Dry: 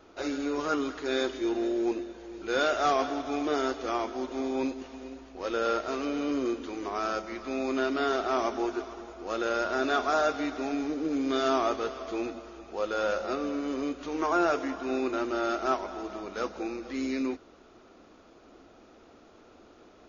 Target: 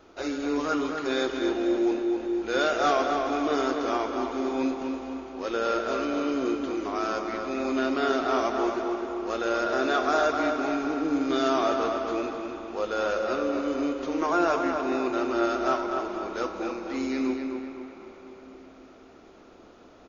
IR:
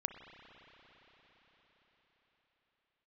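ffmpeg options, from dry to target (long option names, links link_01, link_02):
-filter_complex "[0:a]asplit=2[link_01][link_02];[link_02]adelay=254,lowpass=frequency=3500:poles=1,volume=-5dB,asplit=2[link_03][link_04];[link_04]adelay=254,lowpass=frequency=3500:poles=1,volume=0.5,asplit=2[link_05][link_06];[link_06]adelay=254,lowpass=frequency=3500:poles=1,volume=0.5,asplit=2[link_07][link_08];[link_08]adelay=254,lowpass=frequency=3500:poles=1,volume=0.5,asplit=2[link_09][link_10];[link_10]adelay=254,lowpass=frequency=3500:poles=1,volume=0.5,asplit=2[link_11][link_12];[link_12]adelay=254,lowpass=frequency=3500:poles=1,volume=0.5[link_13];[link_01][link_03][link_05][link_07][link_09][link_11][link_13]amix=inputs=7:normalize=0,asplit=2[link_14][link_15];[1:a]atrim=start_sample=2205[link_16];[link_15][link_16]afir=irnorm=-1:irlink=0,volume=1.5dB[link_17];[link_14][link_17]amix=inputs=2:normalize=0,volume=-5dB"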